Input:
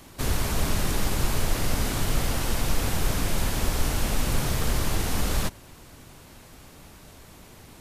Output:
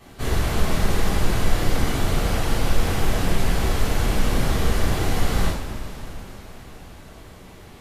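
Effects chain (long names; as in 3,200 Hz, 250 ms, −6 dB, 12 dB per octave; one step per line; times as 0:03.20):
high-shelf EQ 3,800 Hz −9.5 dB
coupled-rooms reverb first 0.57 s, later 4.7 s, from −16 dB, DRR −8 dB
level −3 dB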